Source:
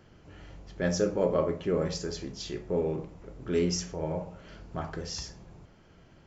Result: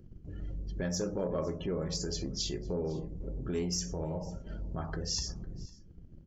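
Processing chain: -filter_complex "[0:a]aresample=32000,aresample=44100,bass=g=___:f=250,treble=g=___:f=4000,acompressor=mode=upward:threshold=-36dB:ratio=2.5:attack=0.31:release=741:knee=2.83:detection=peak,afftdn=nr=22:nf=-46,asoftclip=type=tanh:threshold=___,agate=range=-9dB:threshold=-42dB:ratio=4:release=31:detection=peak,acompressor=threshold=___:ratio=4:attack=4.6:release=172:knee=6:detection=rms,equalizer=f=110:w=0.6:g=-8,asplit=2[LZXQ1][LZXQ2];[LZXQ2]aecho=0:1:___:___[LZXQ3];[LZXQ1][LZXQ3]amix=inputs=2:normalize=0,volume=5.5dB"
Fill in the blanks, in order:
12, 7, -11.5dB, -34dB, 505, 0.0794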